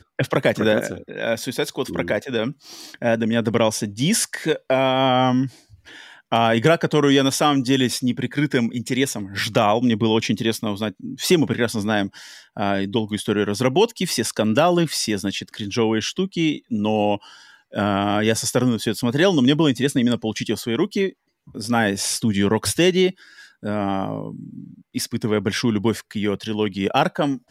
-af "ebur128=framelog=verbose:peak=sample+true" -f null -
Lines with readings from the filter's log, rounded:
Integrated loudness:
  I:         -20.9 LUFS
  Threshold: -31.3 LUFS
Loudness range:
  LRA:         3.7 LU
  Threshold: -41.2 LUFS
  LRA low:   -23.2 LUFS
  LRA high:  -19.5 LUFS
Sample peak:
  Peak:       -3.6 dBFS
True peak:
  Peak:       -3.6 dBFS